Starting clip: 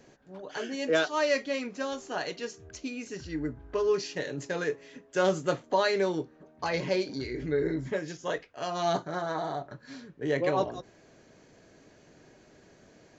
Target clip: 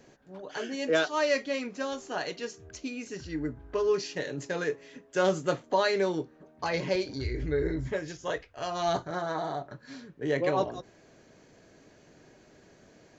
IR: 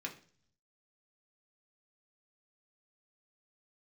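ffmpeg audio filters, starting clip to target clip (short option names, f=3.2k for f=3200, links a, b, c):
-filter_complex "[0:a]asettb=1/sr,asplit=3[a][b][c];[a]atrim=end=6.954[d];[b]atrim=start=6.95:end=9.11,asetpts=PTS-STARTPTS,afade=t=in:d=0.004:c=qsin,afade=t=out:st=2.156:d=0.004:c=qsin,lowshelf=f=120:t=q:w=1.5:g=11.5[e];[c]atrim=start=9.106[f];[d][e]acrossfade=d=0.004:c1=hsin:c2=qsin[g];[g][f]acrossfade=d=0.004:c1=qsin:c2=hsin"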